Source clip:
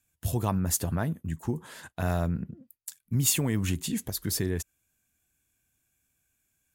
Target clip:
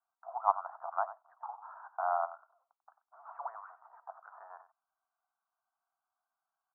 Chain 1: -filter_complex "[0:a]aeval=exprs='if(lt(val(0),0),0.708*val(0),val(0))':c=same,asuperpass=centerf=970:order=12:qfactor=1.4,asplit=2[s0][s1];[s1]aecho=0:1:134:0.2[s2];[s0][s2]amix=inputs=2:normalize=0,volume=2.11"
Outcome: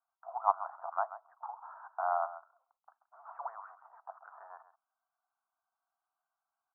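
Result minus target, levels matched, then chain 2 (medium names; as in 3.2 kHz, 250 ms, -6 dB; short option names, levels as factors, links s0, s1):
echo 41 ms late
-filter_complex "[0:a]aeval=exprs='if(lt(val(0),0),0.708*val(0),val(0))':c=same,asuperpass=centerf=970:order=12:qfactor=1.4,asplit=2[s0][s1];[s1]aecho=0:1:93:0.2[s2];[s0][s2]amix=inputs=2:normalize=0,volume=2.11"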